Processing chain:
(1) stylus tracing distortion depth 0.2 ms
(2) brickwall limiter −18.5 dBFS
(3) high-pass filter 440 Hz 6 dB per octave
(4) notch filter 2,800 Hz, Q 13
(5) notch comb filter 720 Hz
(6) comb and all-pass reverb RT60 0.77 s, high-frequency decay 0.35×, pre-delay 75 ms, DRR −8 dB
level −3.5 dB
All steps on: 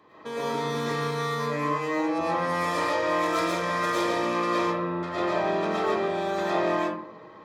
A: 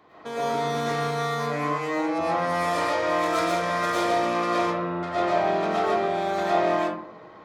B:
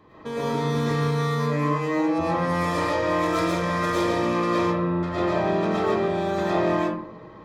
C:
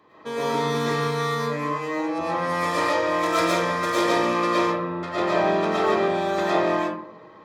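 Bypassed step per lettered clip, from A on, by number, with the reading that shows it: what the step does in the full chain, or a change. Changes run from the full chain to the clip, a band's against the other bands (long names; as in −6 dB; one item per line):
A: 5, 1 kHz band +2.0 dB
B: 3, 125 Hz band +9.0 dB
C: 2, average gain reduction 2.5 dB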